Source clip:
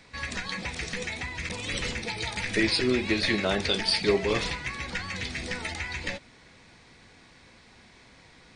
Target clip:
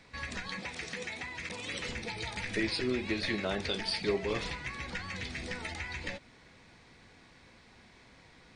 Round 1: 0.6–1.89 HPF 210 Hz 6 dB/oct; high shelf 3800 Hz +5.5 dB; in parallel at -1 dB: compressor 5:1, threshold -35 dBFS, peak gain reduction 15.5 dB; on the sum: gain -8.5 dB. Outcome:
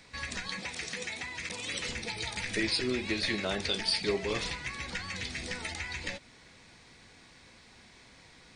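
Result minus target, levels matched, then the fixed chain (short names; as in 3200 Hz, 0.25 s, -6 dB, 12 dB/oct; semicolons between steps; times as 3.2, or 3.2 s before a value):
8000 Hz band +4.5 dB
0.6–1.89 HPF 210 Hz 6 dB/oct; high shelf 3800 Hz -4 dB; in parallel at -1 dB: compressor 5:1, threshold -35 dBFS, peak gain reduction 15 dB; on the sum: gain -8.5 dB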